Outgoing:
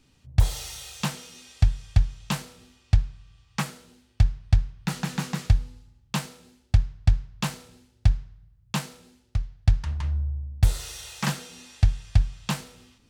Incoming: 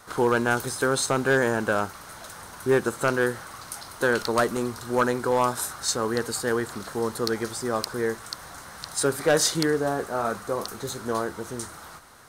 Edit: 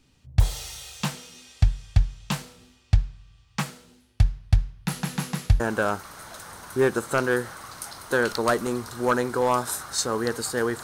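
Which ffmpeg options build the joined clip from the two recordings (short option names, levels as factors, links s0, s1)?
-filter_complex "[0:a]asettb=1/sr,asplit=3[s0][s1][s2];[s0]atrim=end=4.004[s3];[s1]atrim=start=4:end=5.6,asetpts=PTS-STARTPTS,afade=t=in:d=0.004:c=qsin,afade=t=out:st=1.596:d=0.004:c=qsin,equalizer=f=11000:w=4.8:g=13.5[s4];[s2]atrim=start=5.596[s5];[s3][s4]acrossfade=d=0.004:c1=hsin:c2=qsin[s6];[s6][s5]acrossfade=d=0.004:c1=qsin:c2=hsin,apad=whole_dur=10.83,atrim=end=10.83,atrim=end=5.602[s7];[1:a]atrim=start=1.498:end=6.73[s8];[s7][s8]acrossfade=d=0.004:c1=hsin:c2=hsin"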